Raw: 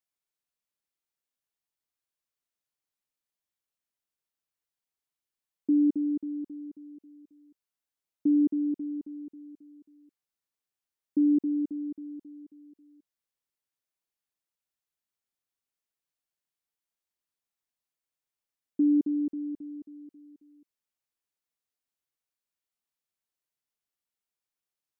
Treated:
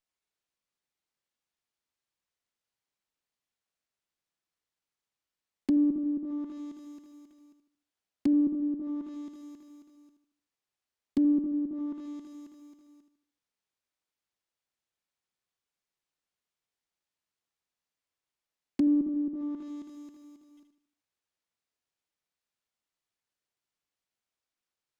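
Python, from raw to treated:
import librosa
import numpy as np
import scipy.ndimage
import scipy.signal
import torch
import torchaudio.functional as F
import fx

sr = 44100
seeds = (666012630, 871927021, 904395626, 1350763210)

y = fx.block_float(x, sr, bits=3)
y = fx.echo_feedback(y, sr, ms=76, feedback_pct=41, wet_db=-8.0)
y = fx.env_lowpass_down(y, sr, base_hz=340.0, full_db=-27.5)
y = fx.running_max(y, sr, window=3)
y = y * 10.0 ** (1.0 / 20.0)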